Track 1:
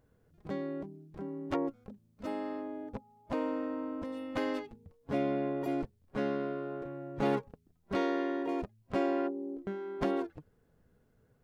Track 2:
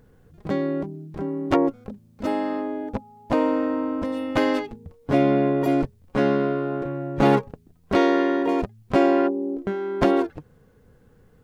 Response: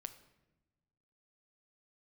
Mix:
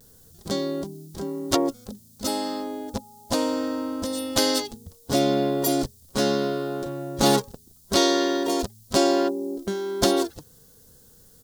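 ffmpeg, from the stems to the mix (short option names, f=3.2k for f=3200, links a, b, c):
-filter_complex "[0:a]volume=-1.5dB[a];[1:a]aexciter=amount=11.7:drive=6.3:freq=3.6k,volume=-1,adelay=6.6,volume=-3dB[b];[a][b]amix=inputs=2:normalize=0"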